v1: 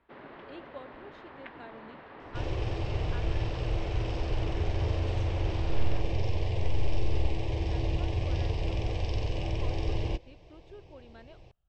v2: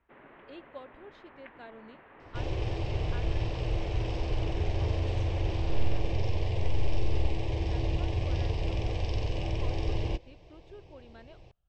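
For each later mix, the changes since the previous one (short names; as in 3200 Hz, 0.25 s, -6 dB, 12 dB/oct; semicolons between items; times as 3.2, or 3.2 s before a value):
first sound: add ladder low-pass 3200 Hz, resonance 30%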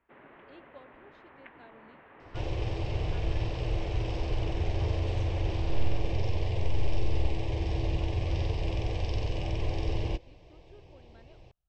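speech -7.0 dB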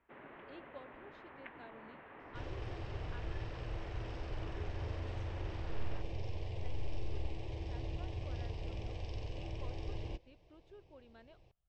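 second sound -11.5 dB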